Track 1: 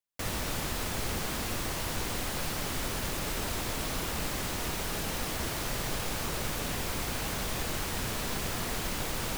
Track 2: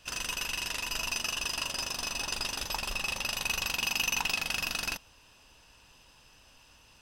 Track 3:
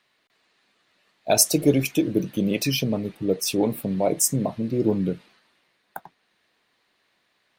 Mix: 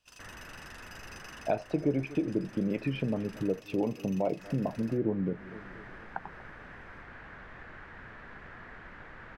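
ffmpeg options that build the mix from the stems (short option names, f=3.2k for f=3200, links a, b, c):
-filter_complex "[0:a]lowpass=f=1.7k:t=q:w=3.8,volume=-16dB,asplit=3[a][b][c];[a]atrim=end=3.6,asetpts=PTS-STARTPTS,afade=t=out:st=3.596:d=0.004:c=hsin[d];[b]atrim=start=3.6:end=4.39,asetpts=PTS-STARTPTS,volume=0[e];[c]atrim=start=4.39,asetpts=PTS-STARTPTS,afade=t=in:d=0.004:c=hsin[f];[d][e][f]concat=n=3:v=0:a=1[g];[1:a]volume=-18.5dB[h];[2:a]lowpass=f=2.2k:w=0.5412,lowpass=f=2.2k:w=1.3066,adelay=200,volume=1dB,asplit=2[i][j];[j]volume=-23dB,aecho=0:1:238|476|714|952|1190|1428|1666|1904:1|0.54|0.292|0.157|0.085|0.0459|0.0248|0.0134[k];[g][h][i][k]amix=inputs=4:normalize=0,acompressor=threshold=-33dB:ratio=2"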